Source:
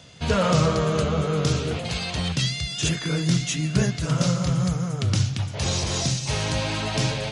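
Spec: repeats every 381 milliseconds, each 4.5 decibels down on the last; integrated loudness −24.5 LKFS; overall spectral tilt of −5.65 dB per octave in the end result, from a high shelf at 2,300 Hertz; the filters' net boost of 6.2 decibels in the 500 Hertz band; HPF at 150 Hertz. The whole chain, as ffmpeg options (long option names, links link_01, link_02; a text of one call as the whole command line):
ffmpeg -i in.wav -af "highpass=150,equalizer=frequency=500:width_type=o:gain=7.5,highshelf=frequency=2300:gain=-7.5,aecho=1:1:381|762|1143|1524|1905|2286|2667|3048|3429:0.596|0.357|0.214|0.129|0.0772|0.0463|0.0278|0.0167|0.01,volume=-2dB" out.wav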